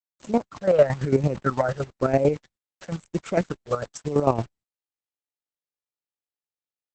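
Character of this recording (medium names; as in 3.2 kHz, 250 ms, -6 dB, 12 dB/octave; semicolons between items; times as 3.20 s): phasing stages 8, 1 Hz, lowest notch 270–1600 Hz; a quantiser's noise floor 8-bit, dither none; chopped level 8.9 Hz, depth 65%, duty 35%; Opus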